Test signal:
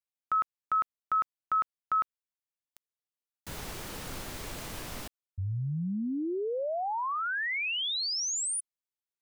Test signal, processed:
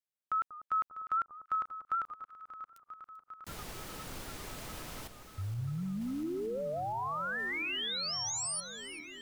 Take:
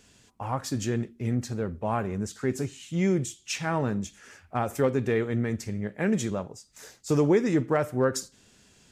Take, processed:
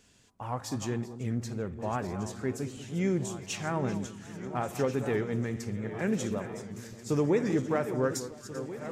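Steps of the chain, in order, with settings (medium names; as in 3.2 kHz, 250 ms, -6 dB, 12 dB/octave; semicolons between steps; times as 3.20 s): backward echo that repeats 693 ms, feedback 71%, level -12 dB; echo whose repeats swap between lows and highs 194 ms, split 1.2 kHz, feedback 57%, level -12 dB; warped record 78 rpm, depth 100 cents; trim -4.5 dB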